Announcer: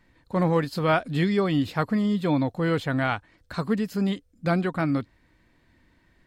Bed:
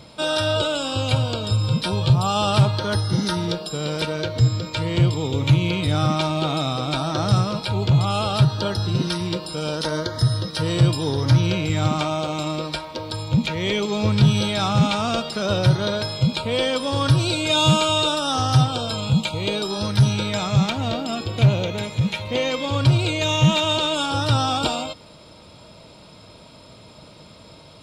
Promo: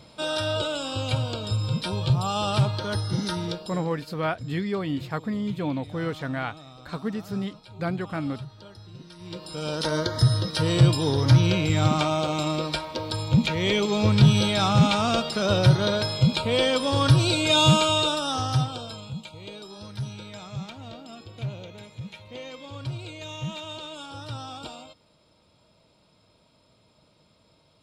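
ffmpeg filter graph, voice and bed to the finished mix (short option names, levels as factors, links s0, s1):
-filter_complex "[0:a]adelay=3350,volume=0.562[s0];[1:a]volume=6.68,afade=t=out:st=3.47:d=0.42:silence=0.141254,afade=t=in:st=9.16:d=0.83:silence=0.0794328,afade=t=out:st=17.58:d=1.55:silence=0.158489[s1];[s0][s1]amix=inputs=2:normalize=0"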